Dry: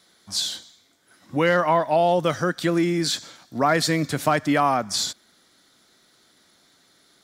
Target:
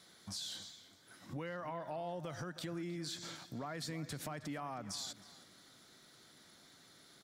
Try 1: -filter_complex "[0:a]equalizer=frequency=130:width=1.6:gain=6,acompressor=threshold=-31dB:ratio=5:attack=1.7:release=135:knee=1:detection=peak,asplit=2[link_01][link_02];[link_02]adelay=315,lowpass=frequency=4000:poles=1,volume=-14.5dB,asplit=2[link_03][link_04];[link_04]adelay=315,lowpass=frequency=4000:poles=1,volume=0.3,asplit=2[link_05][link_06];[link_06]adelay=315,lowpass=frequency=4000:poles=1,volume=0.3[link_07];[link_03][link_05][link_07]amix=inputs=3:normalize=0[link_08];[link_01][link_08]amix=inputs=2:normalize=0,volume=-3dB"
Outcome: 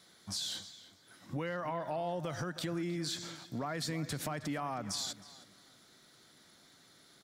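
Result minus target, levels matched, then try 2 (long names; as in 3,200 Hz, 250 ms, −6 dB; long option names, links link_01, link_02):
downward compressor: peak gain reduction −5.5 dB
-filter_complex "[0:a]equalizer=frequency=130:width=1.6:gain=6,acompressor=threshold=-38dB:ratio=5:attack=1.7:release=135:knee=1:detection=peak,asplit=2[link_01][link_02];[link_02]adelay=315,lowpass=frequency=4000:poles=1,volume=-14.5dB,asplit=2[link_03][link_04];[link_04]adelay=315,lowpass=frequency=4000:poles=1,volume=0.3,asplit=2[link_05][link_06];[link_06]adelay=315,lowpass=frequency=4000:poles=1,volume=0.3[link_07];[link_03][link_05][link_07]amix=inputs=3:normalize=0[link_08];[link_01][link_08]amix=inputs=2:normalize=0,volume=-3dB"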